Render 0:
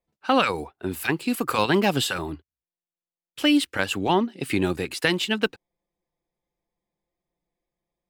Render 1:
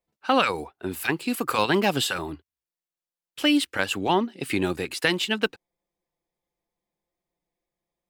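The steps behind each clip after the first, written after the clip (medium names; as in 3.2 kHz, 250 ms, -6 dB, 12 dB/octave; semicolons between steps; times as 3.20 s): bass shelf 240 Hz -4.5 dB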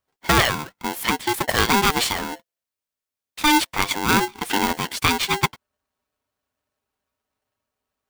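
polarity switched at an audio rate 600 Hz; trim +3.5 dB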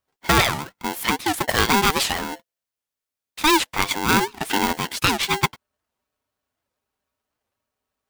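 warped record 78 rpm, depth 250 cents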